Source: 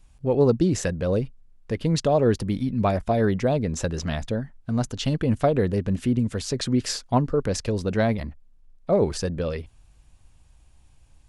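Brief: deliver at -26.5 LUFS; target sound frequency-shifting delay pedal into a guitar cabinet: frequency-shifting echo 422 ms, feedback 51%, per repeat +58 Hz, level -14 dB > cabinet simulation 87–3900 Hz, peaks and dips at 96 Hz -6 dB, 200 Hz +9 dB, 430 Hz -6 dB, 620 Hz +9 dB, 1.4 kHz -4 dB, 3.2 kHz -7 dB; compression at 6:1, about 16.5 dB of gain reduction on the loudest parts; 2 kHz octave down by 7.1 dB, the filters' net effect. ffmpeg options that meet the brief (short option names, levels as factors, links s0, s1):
-filter_complex "[0:a]equalizer=f=2000:t=o:g=-7,acompressor=threshold=0.02:ratio=6,asplit=6[s0][s1][s2][s3][s4][s5];[s1]adelay=422,afreqshift=58,volume=0.2[s6];[s2]adelay=844,afreqshift=116,volume=0.102[s7];[s3]adelay=1266,afreqshift=174,volume=0.0519[s8];[s4]adelay=1688,afreqshift=232,volume=0.0266[s9];[s5]adelay=2110,afreqshift=290,volume=0.0135[s10];[s0][s6][s7][s8][s9][s10]amix=inputs=6:normalize=0,highpass=87,equalizer=f=96:t=q:w=4:g=-6,equalizer=f=200:t=q:w=4:g=9,equalizer=f=430:t=q:w=4:g=-6,equalizer=f=620:t=q:w=4:g=9,equalizer=f=1400:t=q:w=4:g=-4,equalizer=f=3200:t=q:w=4:g=-7,lowpass=f=3900:w=0.5412,lowpass=f=3900:w=1.3066,volume=2.82"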